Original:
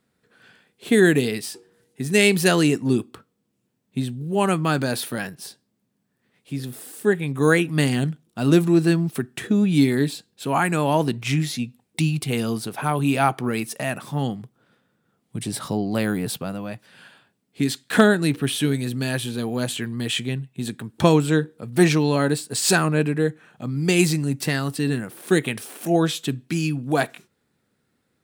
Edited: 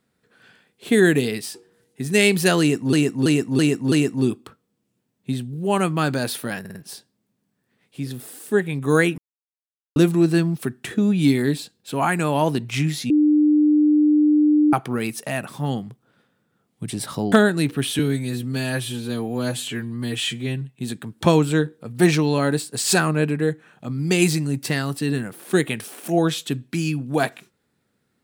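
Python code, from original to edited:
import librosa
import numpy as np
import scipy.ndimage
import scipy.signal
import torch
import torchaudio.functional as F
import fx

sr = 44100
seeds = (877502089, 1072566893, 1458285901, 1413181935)

y = fx.edit(x, sr, fx.repeat(start_s=2.6, length_s=0.33, count=5),
    fx.stutter(start_s=5.28, slice_s=0.05, count=4),
    fx.silence(start_s=7.71, length_s=0.78),
    fx.bleep(start_s=11.63, length_s=1.63, hz=300.0, db=-12.5),
    fx.cut(start_s=15.85, length_s=2.12),
    fx.stretch_span(start_s=18.64, length_s=1.75, factor=1.5), tone=tone)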